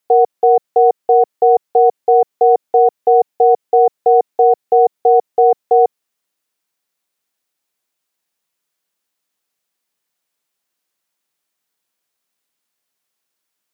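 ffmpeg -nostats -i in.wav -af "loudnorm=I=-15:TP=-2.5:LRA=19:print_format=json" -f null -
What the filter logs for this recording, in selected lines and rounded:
"input_i" : "-13.3",
"input_tp" : "-2.9",
"input_lra" : "1.7",
"input_thresh" : "-23.3",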